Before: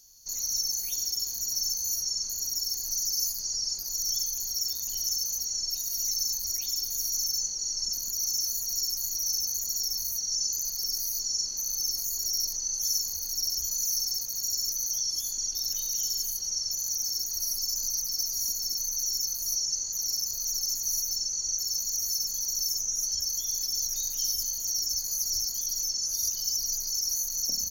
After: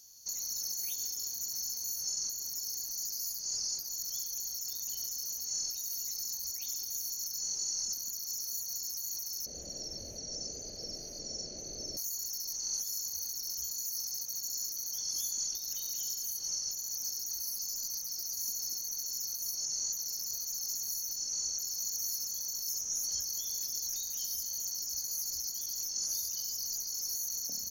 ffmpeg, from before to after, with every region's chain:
-filter_complex "[0:a]asettb=1/sr,asplit=3[s0][s1][s2];[s0]atrim=end=9.464[s3];[s1]atrim=start=9.46:end=11.97,asetpts=PTS-STARTPTS,afade=t=in:d=0.004:c=qsin,afade=t=out:st=2.506:d=0.004:c=qsin,lowpass=3200,lowshelf=f=770:t=q:w=3:g=9.5[s4];[s2]atrim=start=11.966[s5];[s3][s4]acrossfade=d=0.004:c1=hsin:c2=qsin[s6];[s6][s5]acrossfade=d=0.004:c1=qsin:c2=hsin,highpass=f=120:p=1,afftfilt=real='re*lt(hypot(re,im),0.141)':imag='im*lt(hypot(re,im),0.141)':win_size=1024:overlap=0.75,alimiter=limit=0.0631:level=0:latency=1:release=157"

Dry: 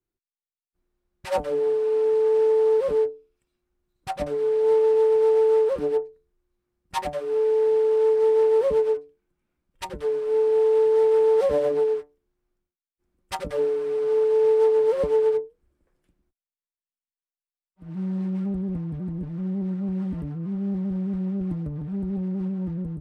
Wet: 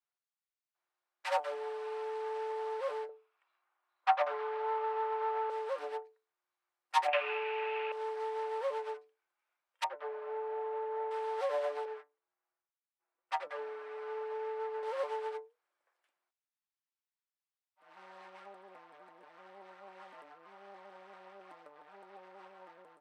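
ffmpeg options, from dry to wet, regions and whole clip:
-filter_complex "[0:a]asettb=1/sr,asplit=3[s0][s1][s2];[s0]atrim=end=3.094[s3];[s1]atrim=start=3.09:end=5.5,asetpts=PTS-STARTPTS,afade=t=in:d=0.004:c=qsin,afade=t=out:st=2.406:d=0.004:c=qsin,equalizer=f=1100:t=o:w=0.79:g=5.5,acontrast=56,highpass=410,lowpass=2900[s4];[s2]atrim=start=5.496[s5];[s3][s4]acrossfade=d=0.004:c1=hsin:c2=qsin[s6];[s6][s5]acrossfade=d=0.004:c1=qsin:c2=hsin,asettb=1/sr,asplit=3[s7][s8][s9];[s7]atrim=end=7.084[s10];[s8]atrim=start=7.08:end=7.92,asetpts=PTS-STARTPTS,afade=t=in:d=0.004:c=qsin,afade=t=out:st=0.836:d=0.004:c=qsin,bandreject=f=400:w=8.1,acontrast=89,lowpass=f=2600:t=q:w=9.5[s11];[s9]atrim=start=7.916[s12];[s10][s11]acrossfade=d=0.004:c1=hsin:c2=qsin[s13];[s13][s12]acrossfade=d=0.004:c1=qsin:c2=hsin,asettb=1/sr,asplit=3[s14][s15][s16];[s14]atrim=end=9.844[s17];[s15]atrim=start=9.84:end=11.11,asetpts=PTS-STARTPTS,afade=t=in:d=0.004:c=qsin,afade=t=out:st=1.266:d=0.004:c=qsin,lowpass=1800,equalizer=f=620:t=o:w=0.29:g=8[s18];[s16]atrim=start=11.106[s19];[s17][s18]acrossfade=d=0.004:c1=hsin:c2=qsin[s20];[s20][s19]acrossfade=d=0.004:c1=qsin:c2=hsin,asettb=1/sr,asplit=3[s21][s22][s23];[s21]atrim=end=11.854[s24];[s22]atrim=start=11.85:end=14.83,asetpts=PTS-STARTPTS,afade=t=in:d=0.004:c=qsin,afade=t=out:st=2.976:d=0.004:c=qsin,lowpass=f=1400:p=1,aecho=1:1:6.1:0.53,atrim=end_sample=131418[s25];[s23]atrim=start=14.826[s26];[s24][s25]acrossfade=d=0.004:c1=hsin:c2=qsin[s27];[s27][s26]acrossfade=d=0.004:c1=qsin:c2=hsin,aemphasis=mode=reproduction:type=50kf,acompressor=threshold=0.0891:ratio=6,highpass=f=720:w=0.5412,highpass=f=720:w=1.3066,volume=1.12"

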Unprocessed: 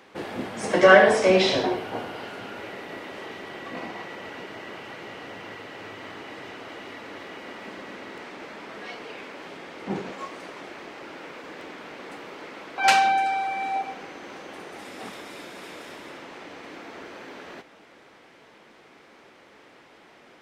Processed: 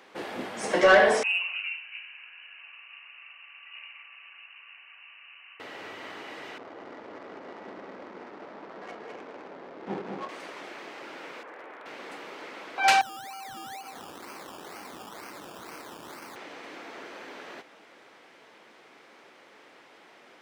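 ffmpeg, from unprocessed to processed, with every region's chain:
-filter_complex "[0:a]asettb=1/sr,asplit=3[s0][s1][s2];[s0]atrim=end=1.234[s3];[s1]atrim=start=1.23:end=5.6,asetpts=PTS-STARTPTS,afade=t=in:d=0.004:c=qsin,afade=t=out:st=4.366:d=0.004:c=qsin,lowpass=f=2600:t=q:w=0.5098,lowpass=f=2600:t=q:w=0.6013,lowpass=f=2600:t=q:w=0.9,lowpass=f=2600:t=q:w=2.563,afreqshift=-3100,aderivative[s4];[s2]atrim=start=5.596[s5];[s3][s4]acrossfade=d=0.004:c1=hsin:c2=qsin[s6];[s6][s5]acrossfade=d=0.004:c1=qsin:c2=hsin,asettb=1/sr,asplit=3[s7][s8][s9];[s7]atrim=end=6.584[s10];[s8]atrim=start=6.58:end=10.29,asetpts=PTS-STARTPTS,afade=t=in:d=0.004:c=qsin,afade=t=out:st=3.706:d=0.004:c=qsin,adynamicsmooth=sensitivity=4:basefreq=510,aecho=1:1:206:0.562,atrim=end_sample=163611[s11];[s9]atrim=start=10.286[s12];[s10][s11]acrossfade=d=0.004:c1=hsin:c2=qsin[s13];[s13][s12]acrossfade=d=0.004:c1=qsin:c2=hsin,asettb=1/sr,asplit=3[s14][s15][s16];[s14]atrim=end=11.434[s17];[s15]atrim=start=11.43:end=11.86,asetpts=PTS-STARTPTS,afade=t=in:d=0.004:c=qsin,afade=t=out:st=0.426:d=0.004:c=qsin,acrossover=split=360 2200:gain=0.2 1 0.0631[s18][s19][s20];[s18][s19][s20]amix=inputs=3:normalize=0,aeval=exprs='0.0178*(abs(mod(val(0)/0.0178+3,4)-2)-1)':c=same[s21];[s16]atrim=start=11.856[s22];[s17][s21]acrossfade=d=0.004:c1=hsin:c2=qsin[s23];[s23][s22]acrossfade=d=0.004:c1=qsin:c2=hsin,asettb=1/sr,asplit=3[s24][s25][s26];[s24]atrim=end=13.014[s27];[s25]atrim=start=13.01:end=16.36,asetpts=PTS-STARTPTS,afade=t=in:d=0.004:c=qsin,afade=t=out:st=3.346:d=0.004:c=qsin,aecho=1:1:0.9:0.36,atrim=end_sample=147735,acompressor=threshold=0.0158:ratio=20:attack=3.2:release=140:knee=1:detection=peak,acrusher=samples=17:mix=1:aa=0.000001:lfo=1:lforange=10.2:lforate=2.1[s28];[s26]atrim=start=16.356[s29];[s27][s28]acrossfade=d=0.004:c1=hsin:c2=qsin[s30];[s30][s29]acrossfade=d=0.004:c1=qsin:c2=hsin,highpass=f=340:p=1,acontrast=90,volume=0.398"

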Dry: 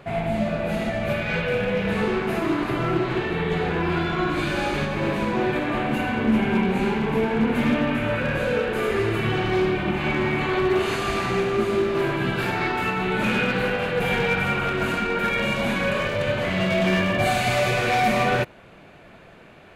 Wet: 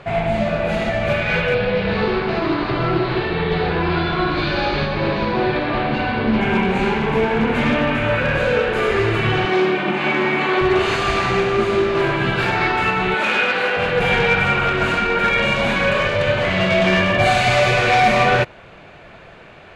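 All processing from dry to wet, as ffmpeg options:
-filter_complex "[0:a]asettb=1/sr,asplit=3[s0][s1][s2];[s0]atrim=end=1.544[s3];[s1]atrim=start=1.54:end=6.41,asetpts=PTS-STARTPTS,afade=t=in:d=0.004:c=qsin,afade=t=out:st=4.866:d=0.004:c=qsin,lowpass=f=4400:t=q:w=4.5,highshelf=f=2200:g=-10.5[s4];[s2]atrim=start=6.406[s5];[s3][s4]acrossfade=d=0.004:c1=hsin:c2=qsin[s6];[s6][s5]acrossfade=d=0.004:c1=qsin:c2=hsin,asettb=1/sr,asplit=3[s7][s8][s9];[s7]atrim=end=9.454[s10];[s8]atrim=start=9.45:end=10.61,asetpts=PTS-STARTPTS,afade=t=in:d=0.004:c=qsin,afade=t=out:st=1.156:d=0.004:c=qsin,highpass=f=190:w=0.5412,highpass=f=190:w=1.3066,bass=f=250:g=3,treble=f=4000:g=-1[s11];[s9]atrim=start=10.606[s12];[s10][s11]acrossfade=d=0.004:c1=hsin:c2=qsin[s13];[s13][s12]acrossfade=d=0.004:c1=qsin:c2=hsin,asettb=1/sr,asplit=3[s14][s15][s16];[s14]atrim=end=13.144[s17];[s15]atrim=start=13.14:end=13.77,asetpts=PTS-STARTPTS,afade=t=in:d=0.004:c=qsin,afade=t=out:st=0.626:d=0.004:c=qsin,highpass=360,bandreject=f=470:w=15[s18];[s16]atrim=start=13.766[s19];[s17][s18]acrossfade=d=0.004:c1=hsin:c2=qsin[s20];[s20][s19]acrossfade=d=0.004:c1=qsin:c2=hsin,lowpass=6400,equalizer=f=240:w=1.1:g=-6,volume=2.24"

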